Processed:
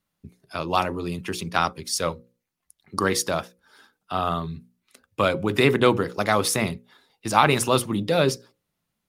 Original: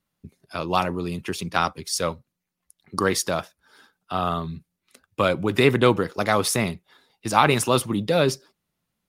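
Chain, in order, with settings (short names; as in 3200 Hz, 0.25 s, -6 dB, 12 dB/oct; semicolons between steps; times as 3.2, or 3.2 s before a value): notches 60/120/180/240/300/360/420/480/540 Hz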